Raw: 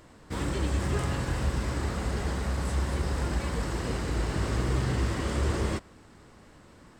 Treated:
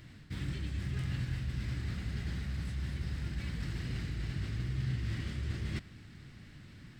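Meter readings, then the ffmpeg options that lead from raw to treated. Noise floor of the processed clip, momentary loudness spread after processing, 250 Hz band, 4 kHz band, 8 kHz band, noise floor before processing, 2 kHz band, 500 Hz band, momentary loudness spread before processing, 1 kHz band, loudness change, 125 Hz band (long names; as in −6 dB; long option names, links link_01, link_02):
−54 dBFS, 16 LU, −9.0 dB, −7.5 dB, −15.5 dB, −54 dBFS, −9.0 dB, −19.0 dB, 3 LU, −19.5 dB, −7.5 dB, −5.0 dB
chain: -af "areverse,acompressor=threshold=-35dB:ratio=12,areverse,equalizer=frequency=125:width_type=o:width=1:gain=9,equalizer=frequency=500:width_type=o:width=1:gain=-11,equalizer=frequency=1000:width_type=o:width=1:gain=-12,equalizer=frequency=2000:width_type=o:width=1:gain=5,equalizer=frequency=4000:width_type=o:width=1:gain=4,equalizer=frequency=8000:width_type=o:width=1:gain=-8"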